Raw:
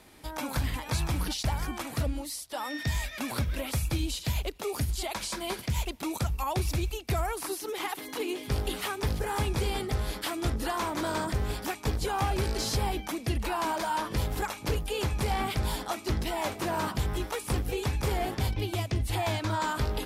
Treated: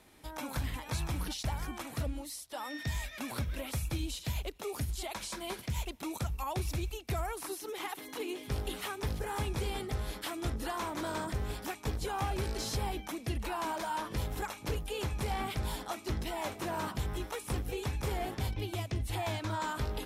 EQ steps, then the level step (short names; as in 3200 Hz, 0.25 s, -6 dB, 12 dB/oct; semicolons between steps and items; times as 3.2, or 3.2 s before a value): notch 4700 Hz, Q 18; -5.5 dB